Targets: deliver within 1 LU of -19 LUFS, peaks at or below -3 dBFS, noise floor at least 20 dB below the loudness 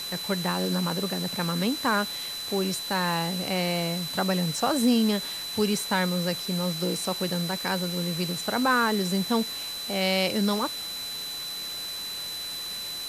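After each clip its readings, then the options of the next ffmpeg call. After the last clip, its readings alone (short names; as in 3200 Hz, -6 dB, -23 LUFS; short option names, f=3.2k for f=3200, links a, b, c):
steady tone 4000 Hz; tone level -33 dBFS; noise floor -35 dBFS; noise floor target -47 dBFS; loudness -27.0 LUFS; peak -10.0 dBFS; loudness target -19.0 LUFS
-> -af "bandreject=f=4k:w=30"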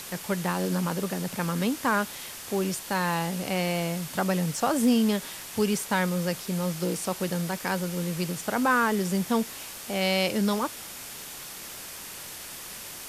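steady tone none; noise floor -41 dBFS; noise floor target -48 dBFS
-> -af "afftdn=nr=7:nf=-41"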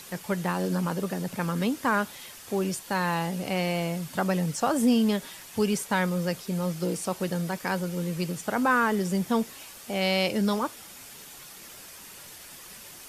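noise floor -46 dBFS; noise floor target -48 dBFS
-> -af "afftdn=nr=6:nf=-46"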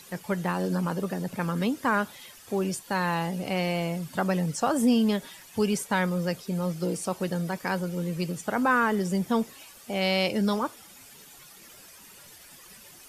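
noise floor -50 dBFS; loudness -28.0 LUFS; peak -11.0 dBFS; loudness target -19.0 LUFS
-> -af "volume=9dB,alimiter=limit=-3dB:level=0:latency=1"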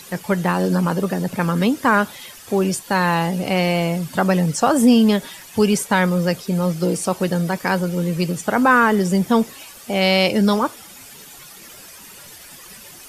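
loudness -19.0 LUFS; peak -3.0 dBFS; noise floor -41 dBFS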